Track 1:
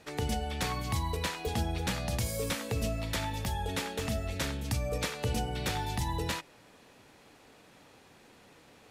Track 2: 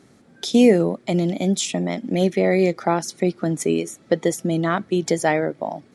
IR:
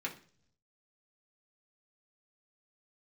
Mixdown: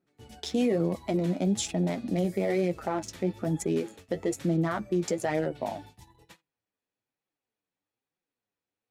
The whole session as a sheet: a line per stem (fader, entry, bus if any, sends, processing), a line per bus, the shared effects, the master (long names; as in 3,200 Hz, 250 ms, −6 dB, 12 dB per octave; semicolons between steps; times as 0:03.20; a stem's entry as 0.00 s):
−12.0 dB, 0.00 s, send −13.5 dB, no processing
−1.5 dB, 0.00 s, no send, adaptive Wiener filter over 15 samples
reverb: on, RT60 0.50 s, pre-delay 3 ms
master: noise gate −42 dBFS, range −20 dB; flanger 1.1 Hz, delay 5.3 ms, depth 6.5 ms, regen +34%; brickwall limiter −18.5 dBFS, peak gain reduction 11 dB